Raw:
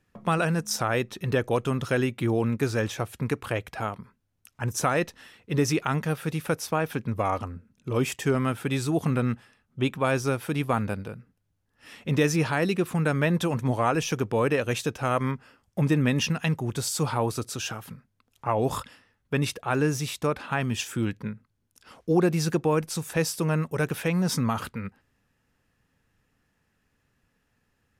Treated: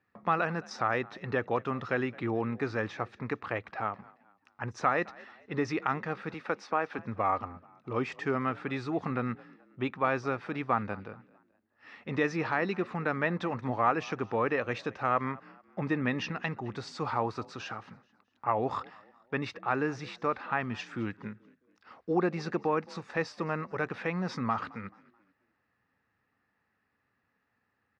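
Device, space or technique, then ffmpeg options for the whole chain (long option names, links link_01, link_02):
frequency-shifting delay pedal into a guitar cabinet: -filter_complex "[0:a]asplit=4[link_01][link_02][link_03][link_04];[link_02]adelay=216,afreqshift=44,volume=-23dB[link_05];[link_03]adelay=432,afreqshift=88,volume=-31.2dB[link_06];[link_04]adelay=648,afreqshift=132,volume=-39.4dB[link_07];[link_01][link_05][link_06][link_07]amix=inputs=4:normalize=0,highpass=110,equalizer=frequency=150:width_type=q:width=4:gain=-7,equalizer=frequency=800:width_type=q:width=4:gain=5,equalizer=frequency=1200:width_type=q:width=4:gain=7,equalizer=frequency=1900:width_type=q:width=4:gain=6,equalizer=frequency=3200:width_type=q:width=4:gain=-7,lowpass=frequency=4400:width=0.5412,lowpass=frequency=4400:width=1.3066,asettb=1/sr,asplit=3[link_08][link_09][link_10];[link_08]atrim=end=6.344[link_11];[link_09]atrim=start=6.34:end=6.99,asetpts=PTS-STARTPTS,afade=type=in:duration=0.004:curve=qsin,afade=type=out:start_time=0.646:duration=0.004:curve=qsin,highpass=210[link_12];[link_10]atrim=start=6.986[link_13];[link_11][link_12]acrossfade=duration=0.004:curve1=hsin:curve2=qsin[link_14];[link_14][link_13]acrossfade=duration=0.004:curve1=qsin:curve2=hsin,volume=-6dB"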